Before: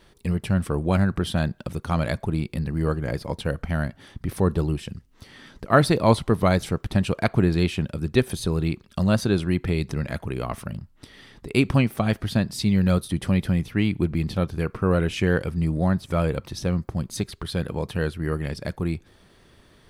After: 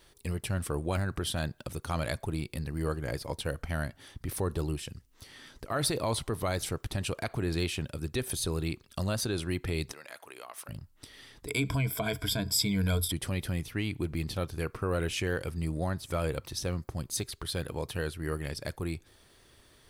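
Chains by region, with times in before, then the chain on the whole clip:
9.92–10.68 HPF 620 Hz + compressor 2:1, threshold -40 dBFS
11.47–13.12 ripple EQ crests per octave 1.7, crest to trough 16 dB + mismatched tape noise reduction encoder only
whole clip: bell 190 Hz -8.5 dB 0.52 oct; limiter -15.5 dBFS; high shelf 4700 Hz +11 dB; gain -6 dB

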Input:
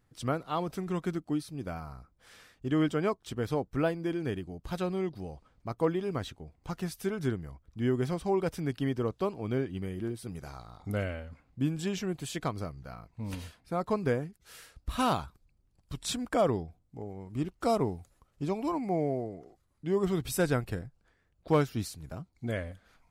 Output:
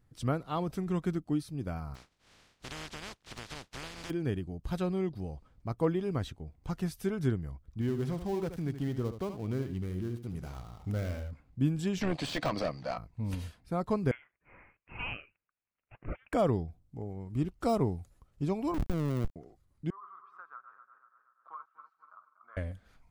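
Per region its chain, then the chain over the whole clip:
1.94–4.09 spectral contrast lowered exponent 0.14 + LPF 4900 Hz + compressor 4:1, threshold -38 dBFS
7.81–11.31 switching dead time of 0.14 ms + compressor 1.5:1, threshold -36 dBFS + echo 76 ms -10 dB
12.01–12.98 speaker cabinet 190–8200 Hz, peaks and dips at 390 Hz -10 dB, 580 Hz +5 dB, 1400 Hz -7 dB, 4500 Hz +5 dB, 7000 Hz -6 dB + overdrive pedal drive 28 dB, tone 2900 Hz, clips at -18 dBFS + AM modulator 76 Hz, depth 30%
14.11–16.33 HPF 1300 Hz 24 dB/oct + inverted band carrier 3800 Hz
18.74–19.36 Schmitt trigger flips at -30.5 dBFS + companded quantiser 4-bit
19.9–22.57 regenerating reverse delay 0.12 s, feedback 52%, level -8.5 dB + Butterworth band-pass 1200 Hz, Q 4.7 + three-band squash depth 70%
whole clip: de-esser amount 80%; low shelf 220 Hz +8.5 dB; gain -3 dB

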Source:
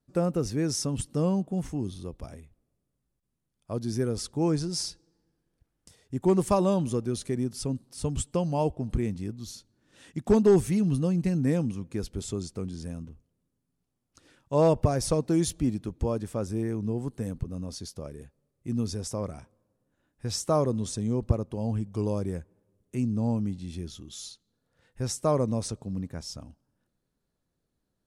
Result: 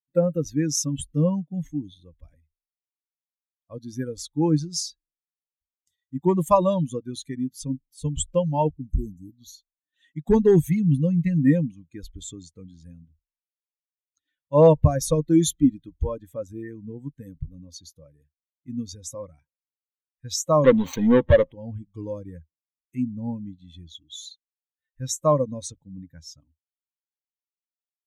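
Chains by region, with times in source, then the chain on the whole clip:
8.71–9.35 brick-wall FIR band-stop 460–5800 Hz + high shelf 9500 Hz +12 dB
20.64–21.52 median filter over 25 samples + overdrive pedal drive 28 dB, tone 3400 Hz, clips at -12.5 dBFS
whole clip: per-bin expansion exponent 2; ripple EQ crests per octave 1.1, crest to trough 9 dB; gain +8.5 dB

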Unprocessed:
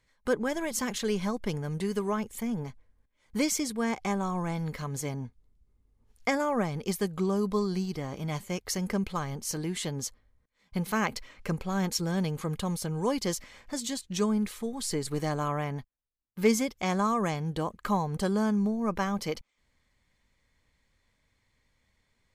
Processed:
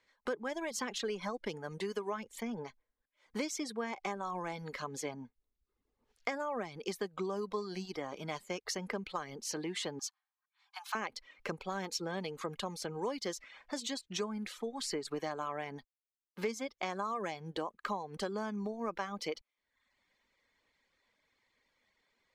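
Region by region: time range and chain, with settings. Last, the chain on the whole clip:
9.99–10.95 steep high-pass 720 Hz 96 dB/oct + notch 2000 Hz, Q 6.8
whole clip: reverb removal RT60 0.68 s; three-band isolator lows -18 dB, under 260 Hz, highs -14 dB, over 6300 Hz; compressor 4:1, threshold -35 dBFS; gain +1 dB

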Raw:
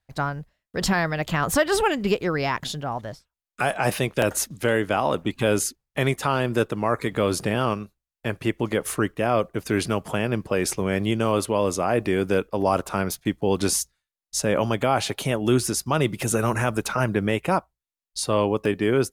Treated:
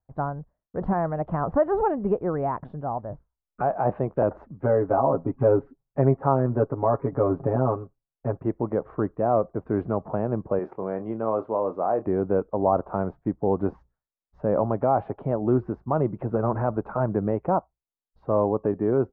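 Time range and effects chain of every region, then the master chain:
3.1–3.62 low shelf 120 Hz +9.5 dB + doubler 20 ms -7.5 dB
4.61–8.37 air absorption 320 m + comb 7.3 ms, depth 95%
10.59–12.06 HPF 450 Hz 6 dB/oct + doubler 27 ms -10.5 dB
whole clip: LPF 1100 Hz 24 dB/oct; dynamic EQ 700 Hz, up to +4 dB, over -36 dBFS, Q 1.8; gain -2 dB

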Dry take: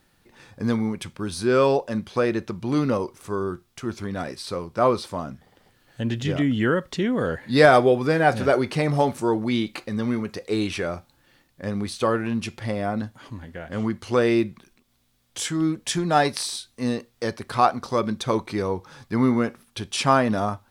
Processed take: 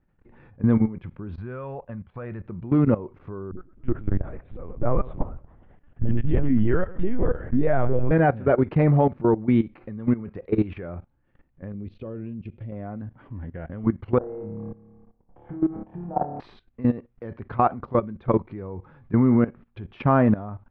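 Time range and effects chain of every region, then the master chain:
1.36–2.46 LPF 2600 Hz 6 dB/oct + bell 330 Hz -12.5 dB 1.6 oct
3.51–8.11 dispersion highs, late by 71 ms, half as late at 330 Hz + feedback echo 0.113 s, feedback 37%, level -17 dB + LPC vocoder at 8 kHz pitch kept
11.72–12.72 band shelf 1200 Hz -11 dB + compressor 2:1, threshold -36 dBFS
14.18–16.4 compressor 16:1, threshold -28 dBFS + synth low-pass 810 Hz, resonance Q 3.9 + flutter echo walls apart 4.8 m, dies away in 1.1 s
whole clip: LPF 2500 Hz 24 dB/oct; tilt -3 dB/oct; level quantiser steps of 17 dB

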